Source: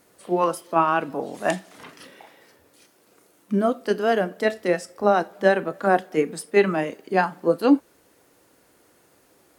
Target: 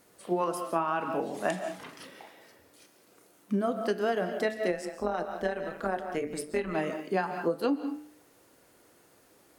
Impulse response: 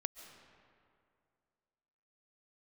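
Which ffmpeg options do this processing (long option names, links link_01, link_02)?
-filter_complex "[0:a]bandreject=frequency=74.97:width_type=h:width=4,bandreject=frequency=149.94:width_type=h:width=4,bandreject=frequency=224.91:width_type=h:width=4,bandreject=frequency=299.88:width_type=h:width=4,bandreject=frequency=374.85:width_type=h:width=4,bandreject=frequency=449.82:width_type=h:width=4,bandreject=frequency=524.79:width_type=h:width=4,bandreject=frequency=599.76:width_type=h:width=4,bandreject=frequency=674.73:width_type=h:width=4,bandreject=frequency=749.7:width_type=h:width=4,bandreject=frequency=824.67:width_type=h:width=4,bandreject=frequency=899.64:width_type=h:width=4,bandreject=frequency=974.61:width_type=h:width=4,bandreject=frequency=1049.58:width_type=h:width=4,bandreject=frequency=1124.55:width_type=h:width=4,bandreject=frequency=1199.52:width_type=h:width=4,bandreject=frequency=1274.49:width_type=h:width=4,bandreject=frequency=1349.46:width_type=h:width=4,bandreject=frequency=1424.43:width_type=h:width=4,bandreject=frequency=1499.4:width_type=h:width=4,bandreject=frequency=1574.37:width_type=h:width=4,bandreject=frequency=1649.34:width_type=h:width=4,bandreject=frequency=1724.31:width_type=h:width=4,bandreject=frequency=1799.28:width_type=h:width=4,bandreject=frequency=1874.25:width_type=h:width=4,bandreject=frequency=1949.22:width_type=h:width=4,bandreject=frequency=2024.19:width_type=h:width=4,bandreject=frequency=2099.16:width_type=h:width=4,bandreject=frequency=2174.13:width_type=h:width=4,bandreject=frequency=2249.1:width_type=h:width=4,bandreject=frequency=2324.07:width_type=h:width=4,bandreject=frequency=2399.04:width_type=h:width=4,bandreject=frequency=2474.01:width_type=h:width=4,bandreject=frequency=2548.98:width_type=h:width=4,bandreject=frequency=2623.95:width_type=h:width=4,bandreject=frequency=2698.92:width_type=h:width=4,bandreject=frequency=2773.89:width_type=h:width=4[link_01];[1:a]atrim=start_sample=2205,afade=type=out:start_time=0.26:duration=0.01,atrim=end_sample=11907[link_02];[link_01][link_02]afir=irnorm=-1:irlink=0,acompressor=threshold=-24dB:ratio=10,asettb=1/sr,asplit=3[link_03][link_04][link_05];[link_03]atrim=end=4.714[link_06];[link_04]atrim=start=4.71:end=6.75,asetpts=PTS-STARTPTS,afade=type=in:duration=0.004:curve=qsin,afade=type=out:start_time=2.036:duration=0.004:curve=qsin,tremolo=f=160:d=0.621[link_07];[link_05]atrim=start=6.746[link_08];[link_06][link_07]acrossfade=duration=0.004:curve1=hsin:curve2=qsin[link_09];[link_09][link_08]acrossfade=duration=0.004:curve1=qsin:curve2=hsin"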